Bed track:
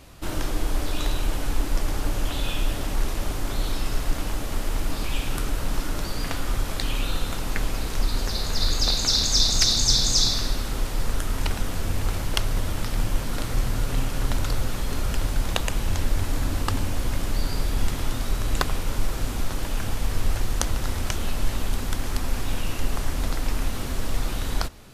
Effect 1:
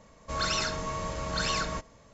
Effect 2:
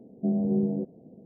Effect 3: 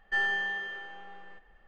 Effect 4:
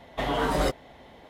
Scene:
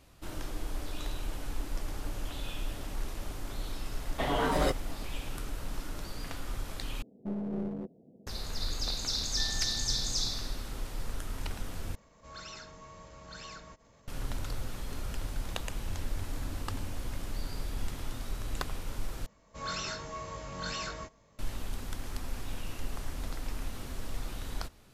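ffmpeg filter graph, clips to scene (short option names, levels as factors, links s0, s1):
-filter_complex "[1:a]asplit=2[s0][s1];[0:a]volume=0.266[s2];[2:a]aeval=exprs='clip(val(0),-1,0.0355)':c=same[s3];[s0]acompressor=mode=upward:threshold=0.0178:ratio=4:attack=1.3:release=106:knee=2.83:detection=peak[s4];[s1]flanger=delay=19:depth=2.7:speed=1.1[s5];[s2]asplit=4[s6][s7][s8][s9];[s6]atrim=end=7.024[s10];[s3]atrim=end=1.25,asetpts=PTS-STARTPTS,volume=0.422[s11];[s7]atrim=start=8.266:end=11.954[s12];[s4]atrim=end=2.13,asetpts=PTS-STARTPTS,volume=0.15[s13];[s8]atrim=start=14.076:end=19.264[s14];[s5]atrim=end=2.13,asetpts=PTS-STARTPTS,volume=0.596[s15];[s9]atrim=start=21.386[s16];[4:a]atrim=end=1.29,asetpts=PTS-STARTPTS,volume=0.708,afade=t=in:d=0.004:c=hsin,afade=t=out:st=1.286:d=0.004:c=hsin,adelay=176841S[s17];[3:a]atrim=end=1.67,asetpts=PTS-STARTPTS,volume=0.158,afade=t=in:d=0.004:c=hsin,afade=t=out:st=1.666:d=0.004:c=hsin,adelay=9250[s18];[s10][s11]acrossfade=d=0.004:c1=hsin:c2=hsin[s19];[s19][s12]acrossfade=d=0.004:c1=hsin:c2=hsin[s20];[s20][s13]acrossfade=d=0.004:c1=hsin:c2=hsin[s21];[s21][s14]acrossfade=d=0.004:c1=hsin:c2=hsin[s22];[s22][s15]acrossfade=d=0.004:c1=hsin:c2=hsin[s23];[s23][s16]acrossfade=d=0.004:c1=hsin:c2=hsin[s24];[s24][s17][s18]amix=inputs=3:normalize=0"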